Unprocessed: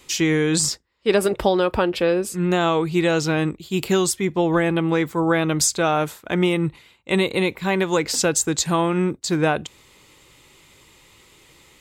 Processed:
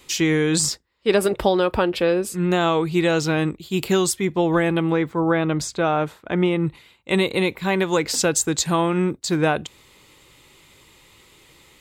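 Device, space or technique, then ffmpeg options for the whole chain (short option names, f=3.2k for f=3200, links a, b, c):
exciter from parts: -filter_complex "[0:a]asettb=1/sr,asplit=3[a][b][c];[a]atrim=end=4.924[d];[b]atrim=start=4.92:end=6.67,asetpts=PTS-STARTPTS,afade=t=in:d=0.004:c=qsin,afade=t=out:st=1.746:d=0.004:c=qsin,aemphasis=mode=reproduction:type=75kf[e];[c]atrim=start=6.666[f];[d][e]acrossfade=d=0.004:c1=hsin:c2=qsin[g];[g][f]acrossfade=d=0.004:c1=qsin:c2=hsin,asplit=2[h][i];[i]highpass=f=3.7k:w=0.5412,highpass=f=3.7k:w=1.3066,asoftclip=type=tanh:threshold=-31dB,highpass=f=3.5k:w=0.5412,highpass=f=3.5k:w=1.3066,volume=-14dB[j];[h][j]amix=inputs=2:normalize=0"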